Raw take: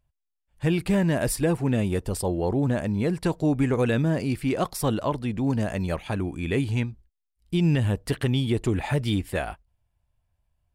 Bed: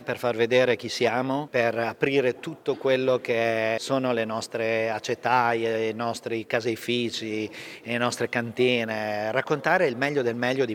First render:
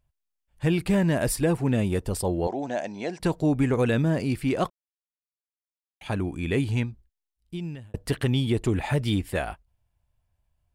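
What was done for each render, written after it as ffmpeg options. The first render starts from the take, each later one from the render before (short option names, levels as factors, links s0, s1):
-filter_complex "[0:a]asettb=1/sr,asplit=3[s0][s1][s2];[s0]atrim=end=2.474[s3];[s1]atrim=start=2.47:end=3.2,asetpts=PTS-STARTPTS,afade=t=in:d=0.004:c=qsin,afade=t=out:st=0.726:d=0.004:c=qsin,highpass=390,equalizer=f=450:t=q:w=4:g=-5,equalizer=f=710:t=q:w=4:g=8,equalizer=f=1200:t=q:w=4:g=-10,equalizer=f=6100:t=q:w=4:g=10,lowpass=f=7100:w=0.5412,lowpass=f=7100:w=1.3066[s4];[s2]atrim=start=3.196[s5];[s3][s4]acrossfade=d=0.004:c1=hsin:c2=qsin[s6];[s6][s5]acrossfade=d=0.004:c1=qsin:c2=hsin,asplit=4[s7][s8][s9][s10];[s7]atrim=end=4.7,asetpts=PTS-STARTPTS,afade=t=out:st=4.696:d=0.004:c=hsin[s11];[s8]atrim=start=4.7:end=6.01,asetpts=PTS-STARTPTS,volume=0[s12];[s9]atrim=start=6.01:end=7.94,asetpts=PTS-STARTPTS,afade=t=in:d=0.004:c=hsin,afade=t=out:st=0.75:d=1.18[s13];[s10]atrim=start=7.94,asetpts=PTS-STARTPTS,afade=t=in:d=0.004:c=hsin[s14];[s11][s12][s13][s14]concat=n=4:v=0:a=1"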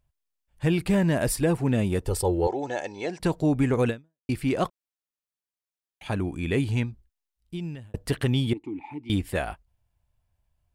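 -filter_complex "[0:a]asettb=1/sr,asplit=3[s0][s1][s2];[s0]atrim=end=2.074[s3];[s1]atrim=start=2.07:end=3.06,asetpts=PTS-STARTPTS,afade=t=in:d=0.004:c=qsin,afade=t=out:st=0.986:d=0.004:c=qsin,aecho=1:1:2.3:0.65,atrim=end_sample=43659[s4];[s2]atrim=start=3.056[s5];[s3][s4]acrossfade=d=0.004:c1=hsin:c2=qsin[s6];[s6][s5]acrossfade=d=0.004:c1=qsin:c2=hsin,asettb=1/sr,asplit=3[s7][s8][s9];[s7]atrim=end=8.534[s10];[s8]atrim=start=8.53:end=9.1,asetpts=PTS-STARTPTS,afade=t=in:d=0.004:c=qsin,afade=t=out:st=0.566:d=0.004:c=qsin,asplit=3[s11][s12][s13];[s11]bandpass=f=300:t=q:w=8,volume=1[s14];[s12]bandpass=f=870:t=q:w=8,volume=0.501[s15];[s13]bandpass=f=2240:t=q:w=8,volume=0.355[s16];[s14][s15][s16]amix=inputs=3:normalize=0[s17];[s9]atrim=start=9.096[s18];[s10][s17]acrossfade=d=0.004:c1=hsin:c2=qsin[s19];[s19][s18]acrossfade=d=0.004:c1=qsin:c2=hsin,asplit=2[s20][s21];[s20]atrim=end=4.29,asetpts=PTS-STARTPTS,afade=t=out:st=3.89:d=0.4:c=exp[s22];[s21]atrim=start=4.29,asetpts=PTS-STARTPTS,afade=t=in:d=0.004:c=hsin[s23];[s22][s23]concat=n=2:v=0:a=1"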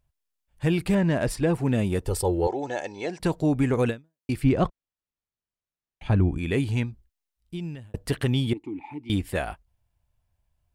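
-filter_complex "[0:a]asplit=3[s0][s1][s2];[s0]afade=t=out:st=0.94:d=0.02[s3];[s1]adynamicsmooth=sensitivity=2.5:basefreq=5400,afade=t=in:st=0.94:d=0.02,afade=t=out:st=1.52:d=0.02[s4];[s2]afade=t=in:st=1.52:d=0.02[s5];[s3][s4][s5]amix=inputs=3:normalize=0,asettb=1/sr,asplit=3[s6][s7][s8];[s6]atrim=end=4.444[s9];[s7]atrim=start=4.44:end=6.38,asetpts=PTS-STARTPTS,afade=t=in:d=0.004:c=qsin,afade=t=out:st=1.936:d=0.004:c=qsin,aemphasis=mode=reproduction:type=bsi[s10];[s8]atrim=start=6.376[s11];[s9][s10]acrossfade=d=0.004:c1=hsin:c2=qsin[s12];[s12][s11]acrossfade=d=0.004:c1=qsin:c2=hsin"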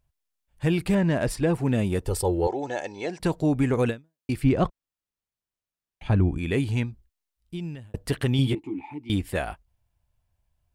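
-filter_complex "[0:a]asettb=1/sr,asplit=3[s0][s1][s2];[s0]atrim=end=8.374[s3];[s1]atrim=start=8.37:end=8.86,asetpts=PTS-STARTPTS,afade=t=in:d=0.004:c=qsin,afade=t=out:st=0.486:d=0.004:c=qsin,asplit=2[s4][s5];[s5]adelay=15,volume=0.708[s6];[s4][s6]amix=inputs=2:normalize=0,atrim=end_sample=21609[s7];[s2]atrim=start=8.856[s8];[s3][s7]acrossfade=d=0.004:c1=hsin:c2=qsin[s9];[s9][s8]acrossfade=d=0.004:c1=qsin:c2=hsin"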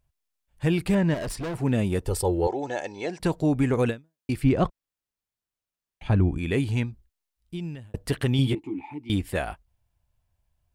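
-filter_complex "[0:a]asettb=1/sr,asplit=3[s0][s1][s2];[s0]atrim=end=1.144[s3];[s1]atrim=start=1.14:end=1.55,asetpts=PTS-STARTPTS,afade=t=in:d=0.004:c=qsin,afade=t=out:st=0.406:d=0.004:c=qsin,asoftclip=type=hard:threshold=0.0355[s4];[s2]atrim=start=1.546[s5];[s3][s4]acrossfade=d=0.004:c1=hsin:c2=qsin[s6];[s6][s5]acrossfade=d=0.004:c1=qsin:c2=hsin"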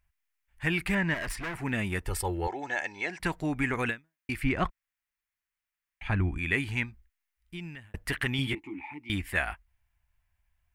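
-af "equalizer=f=125:t=o:w=1:g=-9,equalizer=f=250:t=o:w=1:g=-4,equalizer=f=500:t=o:w=1:g=-11,equalizer=f=2000:t=o:w=1:g=10,equalizer=f=4000:t=o:w=1:g=-5,equalizer=f=8000:t=o:w=1:g=-3"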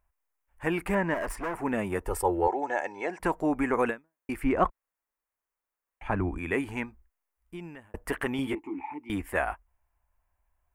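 -af "equalizer=f=125:t=o:w=1:g=-10,equalizer=f=250:t=o:w=1:g=3,equalizer=f=500:t=o:w=1:g=8,equalizer=f=1000:t=o:w=1:g=7,equalizer=f=2000:t=o:w=1:g=-4,equalizer=f=4000:t=o:w=1:g=-12"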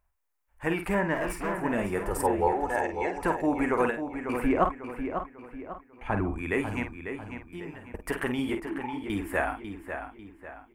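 -filter_complex "[0:a]asplit=2[s0][s1];[s1]adelay=49,volume=0.398[s2];[s0][s2]amix=inputs=2:normalize=0,asplit=2[s3][s4];[s4]adelay=546,lowpass=f=4600:p=1,volume=0.398,asplit=2[s5][s6];[s6]adelay=546,lowpass=f=4600:p=1,volume=0.41,asplit=2[s7][s8];[s8]adelay=546,lowpass=f=4600:p=1,volume=0.41,asplit=2[s9][s10];[s10]adelay=546,lowpass=f=4600:p=1,volume=0.41,asplit=2[s11][s12];[s12]adelay=546,lowpass=f=4600:p=1,volume=0.41[s13];[s3][s5][s7][s9][s11][s13]amix=inputs=6:normalize=0"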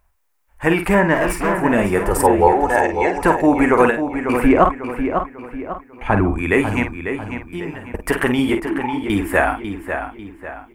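-af "volume=3.98,alimiter=limit=0.891:level=0:latency=1"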